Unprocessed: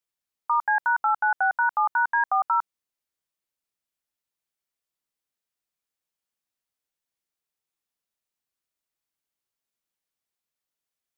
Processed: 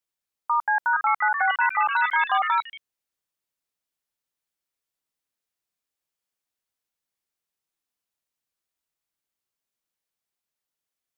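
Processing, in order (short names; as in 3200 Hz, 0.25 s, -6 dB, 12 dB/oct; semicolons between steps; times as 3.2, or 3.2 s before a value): echoes that change speed 0.56 s, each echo +5 st, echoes 3, each echo -6 dB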